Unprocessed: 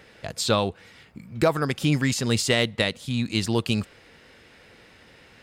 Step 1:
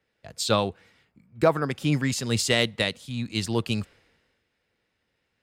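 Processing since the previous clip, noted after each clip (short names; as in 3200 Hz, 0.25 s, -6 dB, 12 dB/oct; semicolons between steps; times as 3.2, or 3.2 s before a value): three-band expander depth 70%; gain -2.5 dB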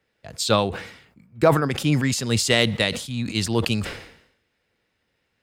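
sustainer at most 80 dB/s; gain +3 dB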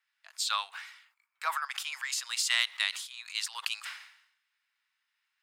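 steep high-pass 1000 Hz 36 dB/oct; gain -6 dB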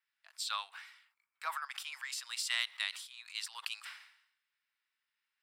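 notch 6600 Hz, Q 8.3; gain -6.5 dB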